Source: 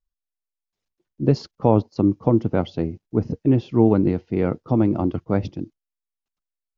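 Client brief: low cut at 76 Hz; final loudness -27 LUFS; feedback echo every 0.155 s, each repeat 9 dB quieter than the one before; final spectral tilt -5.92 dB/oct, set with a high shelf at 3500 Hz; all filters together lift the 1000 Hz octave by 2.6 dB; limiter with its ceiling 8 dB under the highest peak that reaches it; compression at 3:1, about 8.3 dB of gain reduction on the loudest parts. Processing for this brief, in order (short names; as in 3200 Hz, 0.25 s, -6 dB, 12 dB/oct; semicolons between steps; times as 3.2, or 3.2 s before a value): HPF 76 Hz; bell 1000 Hz +3 dB; high shelf 3500 Hz +4.5 dB; compressor 3:1, threshold -22 dBFS; limiter -16 dBFS; feedback echo 0.155 s, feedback 35%, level -9 dB; gain +2 dB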